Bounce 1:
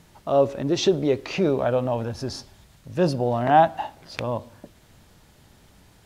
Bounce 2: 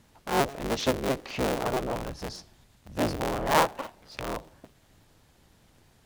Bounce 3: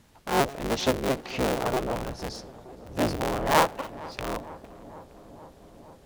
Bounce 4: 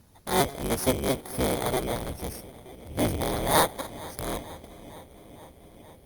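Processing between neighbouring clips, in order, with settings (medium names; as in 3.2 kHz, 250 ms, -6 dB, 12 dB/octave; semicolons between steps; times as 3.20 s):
cycle switcher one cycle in 3, inverted; trim -6.5 dB
filtered feedback delay 461 ms, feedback 81%, low-pass 1.5 kHz, level -18.5 dB; trim +1.5 dB
bit-reversed sample order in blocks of 16 samples; peaking EQ 81 Hz +5.5 dB 0.96 oct; Opus 48 kbps 48 kHz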